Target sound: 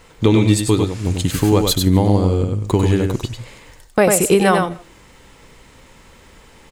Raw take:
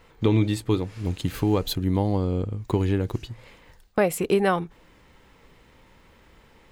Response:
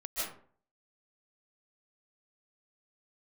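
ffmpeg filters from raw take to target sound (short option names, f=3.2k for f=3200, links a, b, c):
-filter_complex "[0:a]equalizer=f=7.9k:t=o:w=1.2:g=10,aecho=1:1:97:0.596,asplit=2[a][b];[1:a]atrim=start_sample=2205,afade=t=out:st=0.23:d=0.01,atrim=end_sample=10584[c];[b][c]afir=irnorm=-1:irlink=0,volume=-23.5dB[d];[a][d]amix=inputs=2:normalize=0,volume=6.5dB"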